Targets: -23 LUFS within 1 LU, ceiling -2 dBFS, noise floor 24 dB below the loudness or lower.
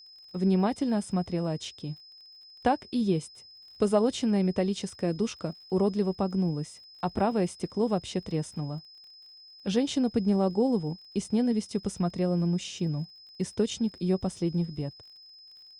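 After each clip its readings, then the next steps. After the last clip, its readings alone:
ticks 41/s; steady tone 5100 Hz; tone level -49 dBFS; loudness -29.0 LUFS; peak -12.5 dBFS; loudness target -23.0 LUFS
-> de-click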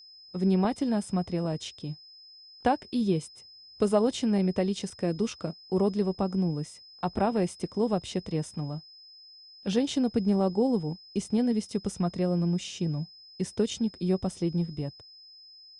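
ticks 0.063/s; steady tone 5100 Hz; tone level -49 dBFS
-> notch 5100 Hz, Q 30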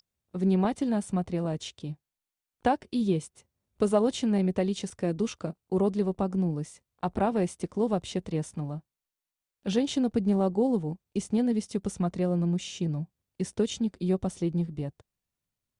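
steady tone none; loudness -29.0 LUFS; peak -12.5 dBFS; loudness target -23.0 LUFS
-> gain +6 dB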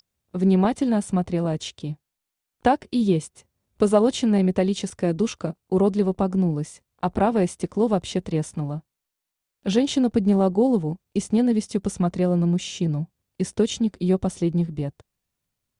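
loudness -23.0 LUFS; peak -6.5 dBFS; noise floor -84 dBFS

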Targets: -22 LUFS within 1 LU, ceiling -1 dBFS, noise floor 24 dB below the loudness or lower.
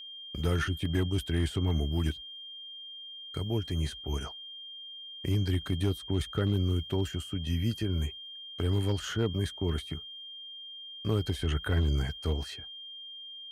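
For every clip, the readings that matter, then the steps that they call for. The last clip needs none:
clipped 0.3%; flat tops at -19.0 dBFS; steady tone 3200 Hz; tone level -42 dBFS; loudness -32.5 LUFS; peak -19.0 dBFS; loudness target -22.0 LUFS
-> clip repair -19 dBFS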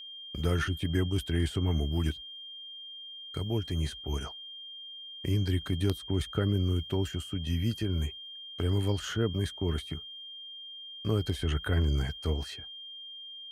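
clipped 0.0%; steady tone 3200 Hz; tone level -42 dBFS
-> notch 3200 Hz, Q 30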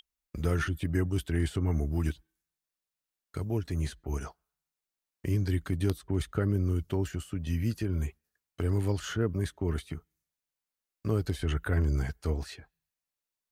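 steady tone none; loudness -31.5 LUFS; peak -11.0 dBFS; loudness target -22.0 LUFS
-> gain +9.5 dB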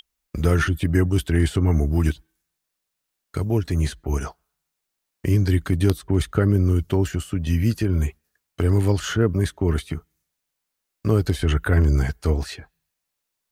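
loudness -22.0 LUFS; peak -1.5 dBFS; noise floor -81 dBFS

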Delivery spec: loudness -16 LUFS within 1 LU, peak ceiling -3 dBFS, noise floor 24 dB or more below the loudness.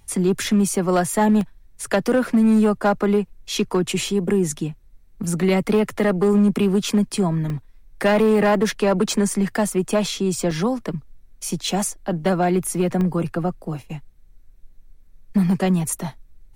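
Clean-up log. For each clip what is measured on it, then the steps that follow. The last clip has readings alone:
clipped 1.3%; flat tops at -11.5 dBFS; dropouts 6; longest dropout 1.2 ms; loudness -20.5 LUFS; peak -11.5 dBFS; loudness target -16.0 LUFS
-> clip repair -11.5 dBFS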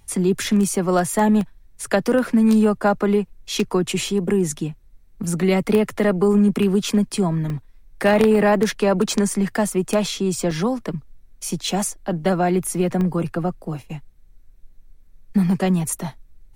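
clipped 0.0%; dropouts 6; longest dropout 1.2 ms
-> interpolate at 0.75/1.41/7.5/10.51/11.67/13.01, 1.2 ms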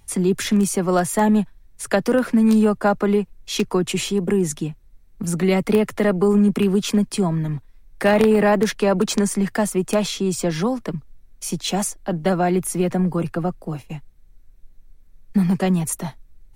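dropouts 0; loudness -20.5 LUFS; peak -2.5 dBFS; loudness target -16.0 LUFS
-> gain +4.5 dB; limiter -3 dBFS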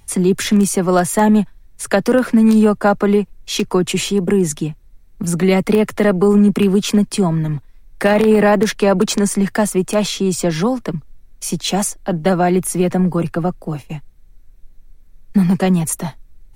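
loudness -16.0 LUFS; peak -3.0 dBFS; noise floor -45 dBFS

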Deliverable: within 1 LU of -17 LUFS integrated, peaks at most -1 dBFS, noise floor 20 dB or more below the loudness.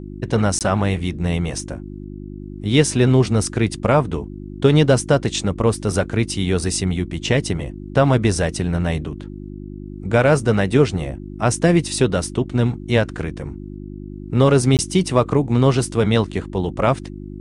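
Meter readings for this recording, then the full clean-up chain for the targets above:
dropouts 2; longest dropout 18 ms; hum 50 Hz; harmonics up to 350 Hz; hum level -31 dBFS; loudness -19.0 LUFS; peak -2.0 dBFS; loudness target -17.0 LUFS
-> interpolate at 0.59/14.77, 18 ms; de-hum 50 Hz, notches 7; gain +2 dB; limiter -1 dBFS

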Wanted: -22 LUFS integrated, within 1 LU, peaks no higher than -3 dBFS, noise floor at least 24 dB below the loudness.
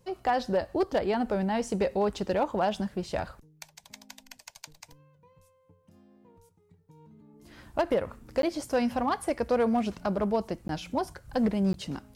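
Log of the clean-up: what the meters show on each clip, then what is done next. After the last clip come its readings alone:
clipped 0.3%; flat tops at -18.5 dBFS; dropouts 3; longest dropout 12 ms; loudness -29.0 LUFS; peak -18.5 dBFS; loudness target -22.0 LUFS
-> clip repair -18.5 dBFS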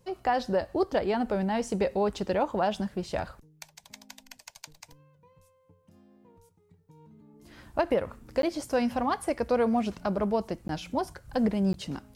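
clipped 0.0%; dropouts 3; longest dropout 12 ms
-> interpolate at 8.42/10.68/11.73, 12 ms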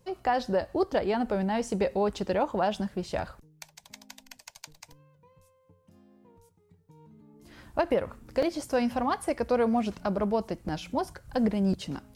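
dropouts 0; loudness -29.0 LUFS; peak -14.5 dBFS; loudness target -22.0 LUFS
-> gain +7 dB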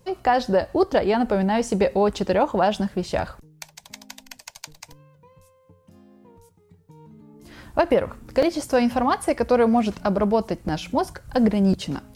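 loudness -22.0 LUFS; peak -7.5 dBFS; noise floor -58 dBFS

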